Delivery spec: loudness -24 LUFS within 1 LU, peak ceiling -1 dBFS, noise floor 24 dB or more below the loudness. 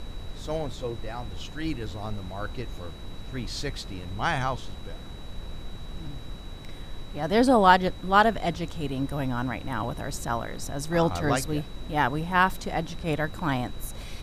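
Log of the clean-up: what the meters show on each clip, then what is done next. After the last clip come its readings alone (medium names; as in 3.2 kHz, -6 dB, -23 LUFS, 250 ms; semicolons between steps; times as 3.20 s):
steady tone 3.9 kHz; tone level -50 dBFS; noise floor -40 dBFS; noise floor target -52 dBFS; loudness -27.5 LUFS; peak level -4.5 dBFS; loudness target -24.0 LUFS
-> band-stop 3.9 kHz, Q 30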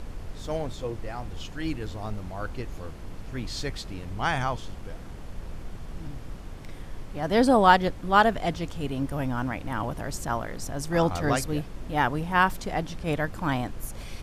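steady tone not found; noise floor -40 dBFS; noise floor target -52 dBFS
-> noise print and reduce 12 dB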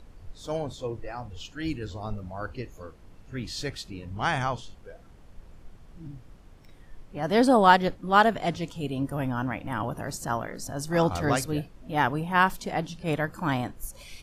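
noise floor -51 dBFS; loudness -27.0 LUFS; peak level -4.5 dBFS; loudness target -24.0 LUFS
-> trim +3 dB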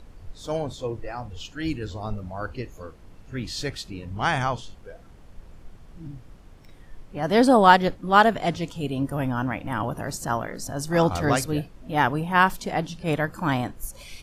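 loudness -24.0 LUFS; peak level -1.5 dBFS; noise floor -48 dBFS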